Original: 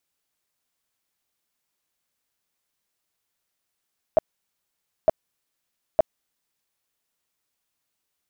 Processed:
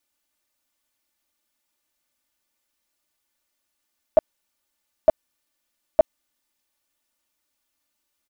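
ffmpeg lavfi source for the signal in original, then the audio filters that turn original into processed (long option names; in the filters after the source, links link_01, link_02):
-f lavfi -i "aevalsrc='0.282*sin(2*PI*638*mod(t,0.91))*lt(mod(t,0.91),10/638)':duration=2.73:sample_rate=44100"
-af "aecho=1:1:3.4:0.84"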